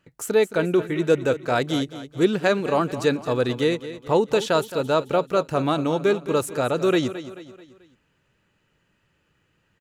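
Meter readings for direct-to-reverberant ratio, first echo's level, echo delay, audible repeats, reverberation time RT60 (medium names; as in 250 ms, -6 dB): no reverb, -13.5 dB, 218 ms, 4, no reverb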